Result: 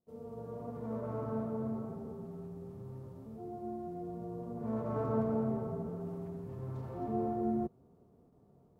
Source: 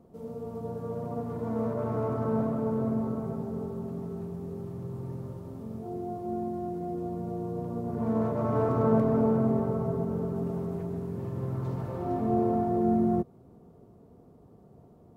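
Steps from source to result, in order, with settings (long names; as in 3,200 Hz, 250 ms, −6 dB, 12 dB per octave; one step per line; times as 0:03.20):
phase-vocoder stretch with locked phases 0.58×
noise gate with hold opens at −49 dBFS
level −7.5 dB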